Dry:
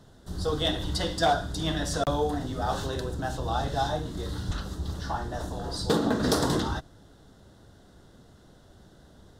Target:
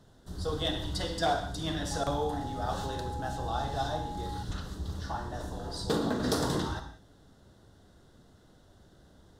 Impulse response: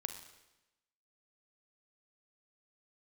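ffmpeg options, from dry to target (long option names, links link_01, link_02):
-filter_complex "[1:a]atrim=start_sample=2205,afade=type=out:start_time=0.25:duration=0.01,atrim=end_sample=11466[link_01];[0:a][link_01]afir=irnorm=-1:irlink=0,asettb=1/sr,asplit=3[link_02][link_03][link_04];[link_02]atrim=end=1.914[link_05];[link_03]atrim=start=1.91:end=4.43,asetpts=PTS-STARTPTS,afade=type=in:duration=0.004:curve=qsin,afade=type=out:start_time=2.516:duration=0.004:curve=qsin,aeval=exprs='val(0)+0.0178*sin(2*PI*830*n/s)':channel_layout=same[link_06];[link_04]atrim=start=4.426[link_07];[link_05][link_06]acrossfade=duration=0.004:curve1=hsin:curve2=qsin[link_08];[link_08][link_07]acrossfade=duration=0.004:curve1=qsin:curve2=hsin,volume=-3.5dB"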